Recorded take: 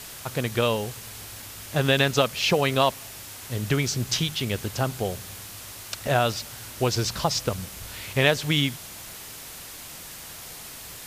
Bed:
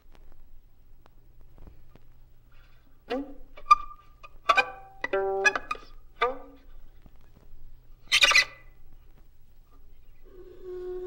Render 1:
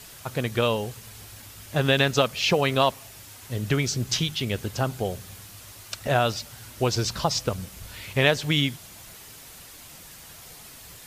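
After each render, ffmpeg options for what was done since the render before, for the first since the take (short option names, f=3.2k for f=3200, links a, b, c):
-af "afftdn=nr=6:nf=-41"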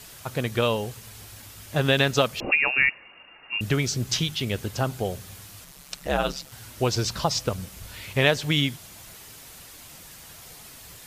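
-filter_complex "[0:a]asettb=1/sr,asplit=3[a][b][c];[a]atrim=end=2.404[d];[b]atrim=start=2.4:end=3.61,asetpts=PTS-STARTPTS,afade=t=in:d=0.004:c=qsin,afade=t=out:st=1.206:d=0.004:c=qsin,lowpass=f=2.5k:t=q:w=0.5098,lowpass=f=2.5k:t=q:w=0.6013,lowpass=f=2.5k:t=q:w=0.9,lowpass=f=2.5k:t=q:w=2.563,afreqshift=-2900[e];[c]atrim=start=3.606[f];[d][e]acrossfade=d=0.004:c1=hsin:c2=qsin[g];[g][f]acrossfade=d=0.004:c1=qsin:c2=hsin,asettb=1/sr,asplit=3[h][i][j];[h]atrim=end=5.644[k];[i]atrim=start=5.64:end=6.52,asetpts=PTS-STARTPTS,afade=t=in:d=0.004:c=qsin,afade=t=out:st=0.876:d=0.004:c=qsin,aeval=exprs='val(0)*sin(2*PI*69*n/s)':c=same[l];[j]atrim=start=6.516[m];[k][l]acrossfade=d=0.004:c1=hsin:c2=qsin[n];[n][m]acrossfade=d=0.004:c1=qsin:c2=hsin"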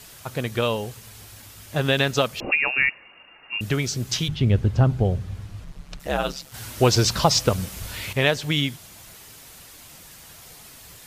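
-filter_complex "[0:a]asettb=1/sr,asplit=3[a][b][c];[a]atrim=end=4.284[d];[b]atrim=start=4.28:end=6,asetpts=PTS-STARTPTS,afade=t=in:d=0.004:c=qsin,afade=t=out:st=1.716:d=0.004:c=qsin,aemphasis=mode=reproduction:type=riaa[e];[c]atrim=start=5.996[f];[d][e]acrossfade=d=0.004:c1=hsin:c2=qsin[g];[g][f]acrossfade=d=0.004:c1=qsin:c2=hsin,asettb=1/sr,asplit=3[h][i][j];[h]atrim=end=6.544[k];[i]atrim=start=6.54:end=8.13,asetpts=PTS-STARTPTS,afade=t=in:d=0.004:c=qsin,afade=t=out:st=1.586:d=0.004:c=qsin,acontrast=76[l];[j]atrim=start=8.126[m];[k][l]acrossfade=d=0.004:c1=hsin:c2=qsin[n];[n][m]acrossfade=d=0.004:c1=qsin:c2=hsin"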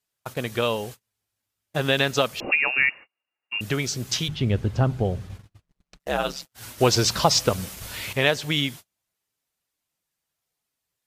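-af "lowshelf=f=140:g=-7.5,agate=range=-37dB:threshold=-37dB:ratio=16:detection=peak"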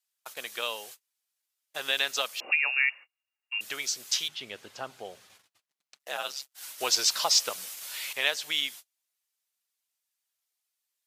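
-af "highpass=1k,equalizer=f=1.3k:t=o:w=2.3:g=-6"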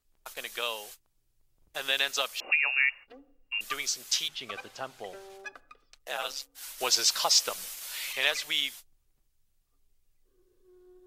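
-filter_complex "[1:a]volume=-20.5dB[a];[0:a][a]amix=inputs=2:normalize=0"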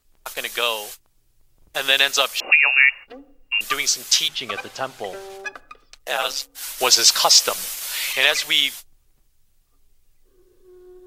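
-af "volume=11dB,alimiter=limit=-1dB:level=0:latency=1"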